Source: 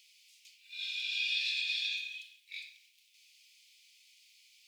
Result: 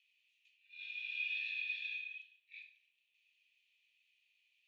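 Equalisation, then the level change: thirty-one-band EQ 2000 Hz -3 dB, 5000 Hz -11 dB, 8000 Hz -6 dB; dynamic EQ 2200 Hz, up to +4 dB, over -47 dBFS, Q 2.1; vowel filter e; +3.5 dB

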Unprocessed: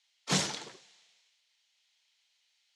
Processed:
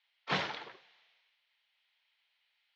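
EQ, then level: Bessel low-pass 3200 Hz, order 2; air absorption 280 m; bell 180 Hz -15 dB 2.9 oct; +6.5 dB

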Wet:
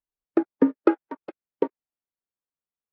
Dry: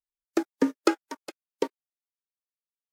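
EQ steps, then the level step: LPF 1100 Hz 6 dB/oct; air absorption 380 m; +5.5 dB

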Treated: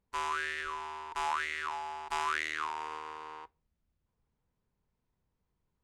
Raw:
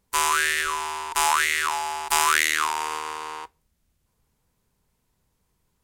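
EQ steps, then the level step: tape spacing loss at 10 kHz 21 dB; -8.5 dB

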